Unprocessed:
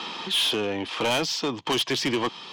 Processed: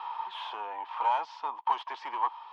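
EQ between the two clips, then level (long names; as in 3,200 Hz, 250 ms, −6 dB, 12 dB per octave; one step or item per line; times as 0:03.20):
dynamic equaliser 870 Hz, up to +4 dB, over −40 dBFS, Q 1.1
four-pole ladder band-pass 990 Hz, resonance 75%
+1.5 dB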